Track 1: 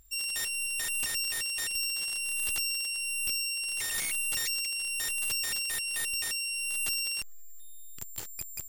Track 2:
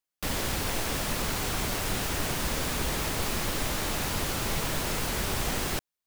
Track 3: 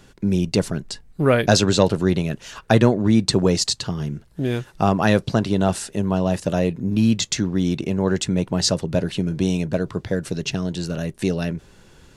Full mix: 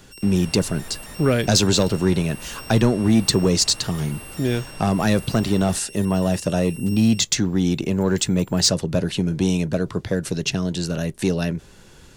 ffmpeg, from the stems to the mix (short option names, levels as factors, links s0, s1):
-filter_complex "[0:a]volume=0.316[s0];[1:a]aemphasis=mode=reproduction:type=75kf,volume=0.355[s1];[2:a]highshelf=f=4800:g=5,acontrast=67,volume=0.562[s2];[s0][s1][s2]amix=inputs=3:normalize=0,acrossover=split=370|3000[s3][s4][s5];[s4]acompressor=threshold=0.0891:ratio=6[s6];[s3][s6][s5]amix=inputs=3:normalize=0"